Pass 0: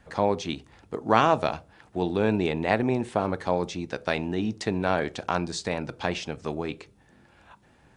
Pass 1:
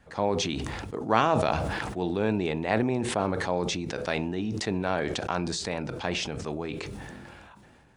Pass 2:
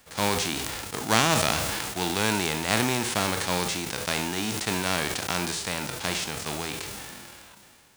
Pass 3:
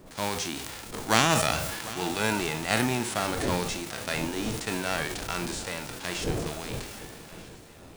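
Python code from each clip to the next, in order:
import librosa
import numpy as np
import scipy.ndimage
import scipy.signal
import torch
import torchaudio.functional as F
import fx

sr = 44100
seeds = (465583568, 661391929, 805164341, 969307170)

y1 = fx.sustainer(x, sr, db_per_s=22.0)
y1 = F.gain(torch.from_numpy(y1), -3.5).numpy()
y2 = fx.envelope_flatten(y1, sr, power=0.3)
y2 = F.gain(torch.from_numpy(y2), 1.0).numpy()
y3 = fx.dmg_wind(y2, sr, seeds[0], corner_hz=440.0, level_db=-38.0)
y3 = fx.noise_reduce_blind(y3, sr, reduce_db=6)
y3 = fx.echo_swing(y3, sr, ms=1241, ratio=1.5, feedback_pct=40, wet_db=-17)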